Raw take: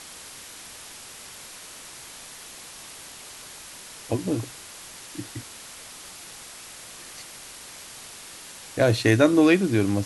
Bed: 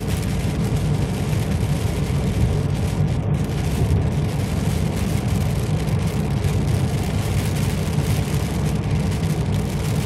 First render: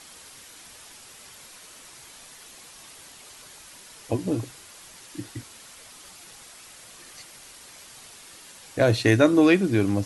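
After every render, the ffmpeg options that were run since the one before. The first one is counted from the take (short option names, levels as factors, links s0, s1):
-af "afftdn=nr=6:nf=-43"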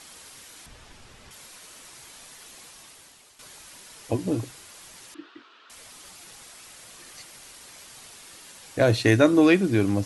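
-filter_complex "[0:a]asettb=1/sr,asplit=3[s0][s1][s2];[s0]atrim=end=0.664[s3];[s1]atrim=start=0.66:end=1.31,asetpts=PTS-STARTPTS,afade=t=in:d=0.004:c=qsin,afade=t=out:st=0.646:d=0.004:c=qsin,aemphasis=mode=reproduction:type=bsi[s4];[s2]atrim=start=1.306[s5];[s3][s4]acrossfade=d=0.004:c1=hsin:c2=qsin[s6];[s6][s5]acrossfade=d=0.004:c1=qsin:c2=hsin,asettb=1/sr,asplit=3[s7][s8][s9];[s7]atrim=end=5.144[s10];[s8]atrim=start=5.14:end=5.7,asetpts=PTS-STARTPTS,afade=t=in:d=0.004:c=qsin,afade=t=out:st=0.556:d=0.004:c=qsin,highpass=f=340:w=0.5412,highpass=f=340:w=1.3066,equalizer=f=530:t=q:w=4:g=-10,equalizer=f=790:t=q:w=4:g=-9,equalizer=f=1300:t=q:w=4:g=6,equalizer=f=2100:t=q:w=4:g=-9,lowpass=f=3300:w=0.5412,lowpass=f=3300:w=1.3066[s11];[s9]atrim=start=5.696[s12];[s10][s11]acrossfade=d=0.004:c1=hsin:c2=qsin[s13];[s13][s12]acrossfade=d=0.004:c1=qsin:c2=hsin,asplit=2[s14][s15];[s14]atrim=end=3.39,asetpts=PTS-STARTPTS,afade=t=out:st=2.64:d=0.75:silence=0.281838[s16];[s15]atrim=start=3.39,asetpts=PTS-STARTPTS,afade=t=in:d=0.004:c=hsin:silence=0.281838[s17];[s16][s17]concat=n=2:v=0:a=1"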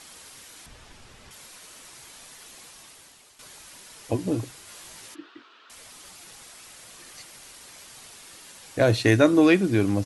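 -filter_complex "[0:a]asplit=3[s0][s1][s2];[s0]afade=t=out:st=4.66:d=0.02[s3];[s1]asplit=2[s4][s5];[s5]adelay=19,volume=0.794[s6];[s4][s6]amix=inputs=2:normalize=0,afade=t=in:st=4.66:d=0.02,afade=t=out:st=5.14:d=0.02[s7];[s2]afade=t=in:st=5.14:d=0.02[s8];[s3][s7][s8]amix=inputs=3:normalize=0"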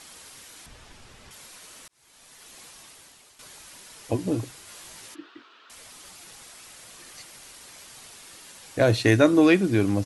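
-filter_complex "[0:a]asplit=2[s0][s1];[s0]atrim=end=1.88,asetpts=PTS-STARTPTS,afade=t=out:st=1.876:d=0.004:c=hsin[s2];[s1]atrim=start=1.88,asetpts=PTS-STARTPTS,afade=t=in:d=0.73[s3];[s2][s3]concat=n=2:v=0:a=1"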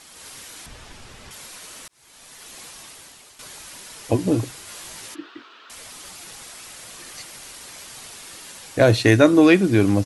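-af "dynaudnorm=f=130:g=3:m=2.11"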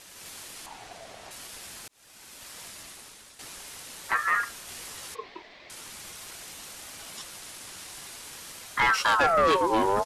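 -af "asoftclip=type=tanh:threshold=0.168,aeval=exprs='val(0)*sin(2*PI*1100*n/s+1100*0.4/0.46*sin(2*PI*0.46*n/s))':c=same"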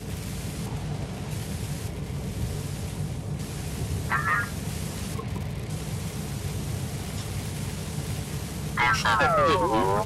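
-filter_complex "[1:a]volume=0.266[s0];[0:a][s0]amix=inputs=2:normalize=0"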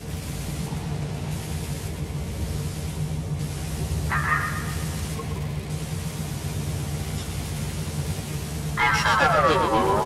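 -filter_complex "[0:a]asplit=2[s0][s1];[s1]adelay=13,volume=0.596[s2];[s0][s2]amix=inputs=2:normalize=0,asplit=2[s3][s4];[s4]aecho=0:1:122|244|366|488|610|732|854:0.422|0.228|0.123|0.0664|0.0359|0.0194|0.0105[s5];[s3][s5]amix=inputs=2:normalize=0"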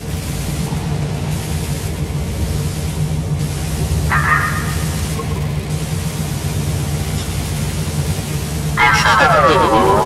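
-af "volume=2.99,alimiter=limit=0.794:level=0:latency=1"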